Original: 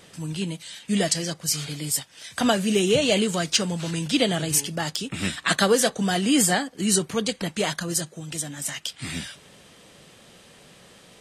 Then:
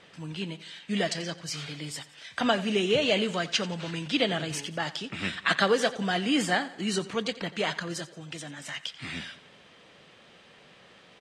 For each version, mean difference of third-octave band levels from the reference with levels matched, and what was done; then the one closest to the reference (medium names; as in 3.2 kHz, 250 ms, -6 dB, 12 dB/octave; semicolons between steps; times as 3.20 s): 4.0 dB: low-pass 2.8 kHz 12 dB/octave; tilt EQ +2 dB/octave; on a send: feedback delay 88 ms, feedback 46%, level -17 dB; on the sum: trim -2 dB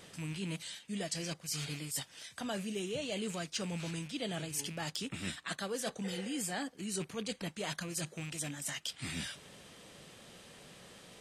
5.5 dB: rattle on loud lows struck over -35 dBFS, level -29 dBFS; spectral replace 6.07–6.36 s, 480–2100 Hz after; reverse; compression 6:1, threshold -32 dBFS, peak gain reduction 16.5 dB; reverse; trim -4 dB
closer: first